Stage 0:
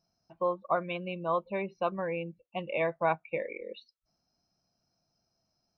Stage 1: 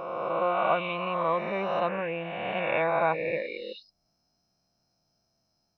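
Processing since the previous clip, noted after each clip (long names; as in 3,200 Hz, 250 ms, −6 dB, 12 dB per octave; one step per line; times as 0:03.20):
peak hold with a rise ahead of every peak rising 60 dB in 2.18 s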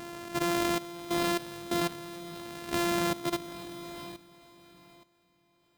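samples sorted by size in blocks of 128 samples
feedback delay with all-pass diffusion 477 ms, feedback 43%, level −8 dB
output level in coarse steps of 14 dB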